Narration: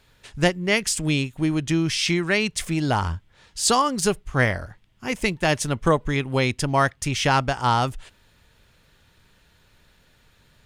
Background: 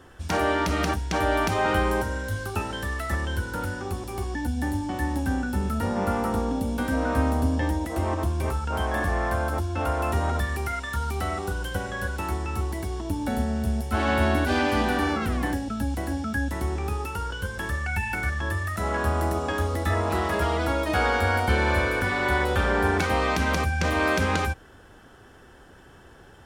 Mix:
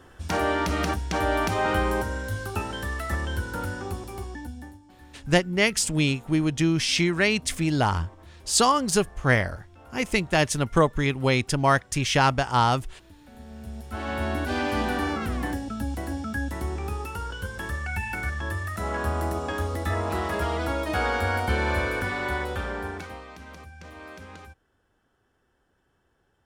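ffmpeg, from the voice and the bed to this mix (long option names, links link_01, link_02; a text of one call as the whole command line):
ffmpeg -i stem1.wav -i stem2.wav -filter_complex "[0:a]adelay=4900,volume=-0.5dB[link_01];[1:a]volume=20dB,afade=type=out:start_time=3.84:duration=0.95:silence=0.0749894,afade=type=in:start_time=13.31:duration=1.49:silence=0.0891251,afade=type=out:start_time=21.95:duration=1.3:silence=0.133352[link_02];[link_01][link_02]amix=inputs=2:normalize=0" out.wav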